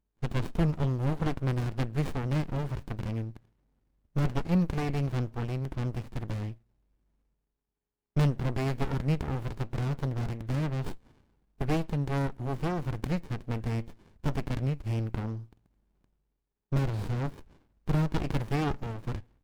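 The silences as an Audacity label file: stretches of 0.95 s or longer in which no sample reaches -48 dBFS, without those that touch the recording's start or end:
6.550000	8.160000	silence
15.530000	16.720000	silence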